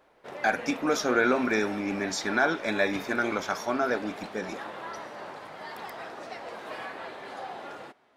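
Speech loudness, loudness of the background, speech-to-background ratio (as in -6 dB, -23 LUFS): -28.0 LUFS, -39.5 LUFS, 11.5 dB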